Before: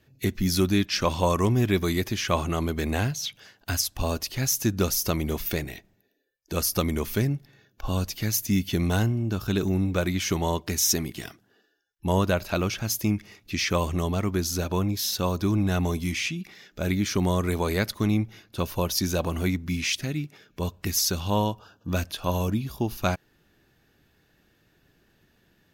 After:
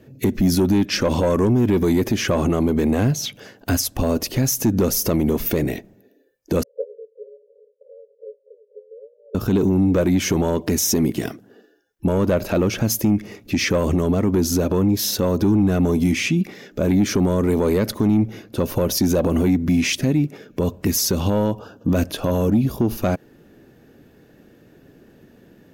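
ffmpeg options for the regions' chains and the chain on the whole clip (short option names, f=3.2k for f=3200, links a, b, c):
-filter_complex "[0:a]asettb=1/sr,asplit=3[a][b][c];[a]atrim=end=6.634[d];[b]atrim=start=6.63:end=9.35,asetpts=PTS-STARTPTS,afade=t=in:d=0.004:c=qsin,afade=t=out:st=2.716:d=0.004:c=qsin,acompressor=threshold=-31dB:ratio=4:attack=3.2:release=140:knee=1:detection=peak,asuperpass=centerf=490:order=20:qfactor=3,tremolo=f=1.1:d=0.82[e];[c]atrim=start=9.346[f];[d][e]acrossfade=d=0.004:c1=hsin:c2=qsin[g];[g][f]acrossfade=d=0.004:c1=qsin:c2=hsin,equalizer=f=125:t=o:w=1:g=4,equalizer=f=250:t=o:w=1:g=10,equalizer=f=500:t=o:w=1:g=10,equalizer=f=4k:t=o:w=1:g=-4,acontrast=74,alimiter=limit=-11dB:level=0:latency=1:release=67"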